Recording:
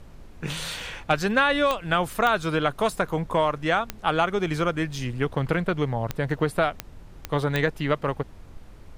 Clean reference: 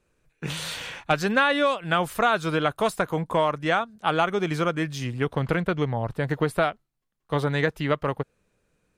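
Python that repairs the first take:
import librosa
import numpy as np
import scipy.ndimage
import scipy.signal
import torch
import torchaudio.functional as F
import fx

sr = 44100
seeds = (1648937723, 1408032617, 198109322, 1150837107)

y = fx.fix_declick_ar(x, sr, threshold=10.0)
y = fx.noise_reduce(y, sr, print_start_s=8.41, print_end_s=8.91, reduce_db=27.0)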